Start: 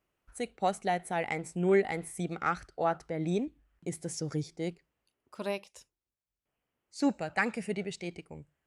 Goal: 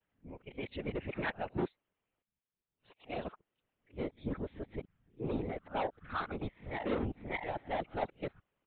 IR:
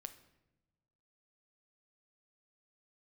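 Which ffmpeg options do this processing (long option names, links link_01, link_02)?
-af "areverse,aresample=8000,asoftclip=type=tanh:threshold=-28dB,aresample=44100,aeval=exprs='val(0)*sin(2*PI*84*n/s)':channel_layout=same,afftfilt=real='hypot(re,im)*cos(2*PI*random(0))':imag='hypot(re,im)*sin(2*PI*random(1))':win_size=512:overlap=0.75,volume=7dB"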